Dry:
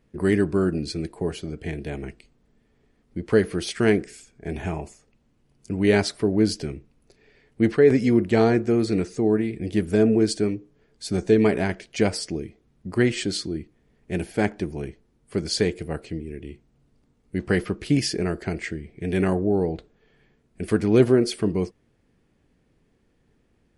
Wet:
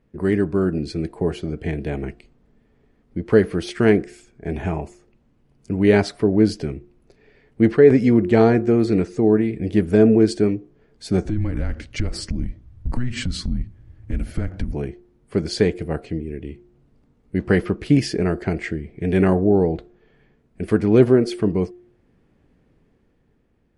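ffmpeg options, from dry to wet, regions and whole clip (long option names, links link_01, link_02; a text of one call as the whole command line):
ffmpeg -i in.wav -filter_complex "[0:a]asettb=1/sr,asplit=3[link_01][link_02][link_03];[link_01]atrim=end=11.254[link_04];[link_02]atrim=start=11.25:end=14.74,asetpts=PTS-STARTPTS,afade=type=in:duration=0.004:curve=qsin,afade=type=out:start_time=3.486:duration=0.004:curve=qsin,bass=frequency=250:gain=14,treble=frequency=4000:gain=2,acompressor=threshold=-23dB:ratio=12:attack=3.2:release=140:knee=1:detection=peak,afreqshift=-120[link_05];[link_03]atrim=start=14.736[link_06];[link_04][link_05]acrossfade=duration=0.004:curve1=hsin:curve2=qsin[link_07];[link_07][link_06]acrossfade=duration=0.004:curve1=qsin:curve2=hsin,bandreject=frequency=356:width_type=h:width=4,bandreject=frequency=712:width_type=h:width=4,dynaudnorm=framelen=100:gausssize=17:maxgain=5dB,highshelf=frequency=3300:gain=-11,volume=1dB" out.wav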